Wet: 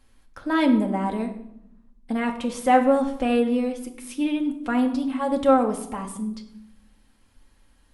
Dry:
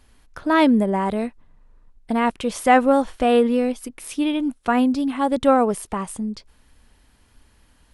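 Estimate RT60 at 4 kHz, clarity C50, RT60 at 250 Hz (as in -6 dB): 0.50 s, 11.0 dB, 1.3 s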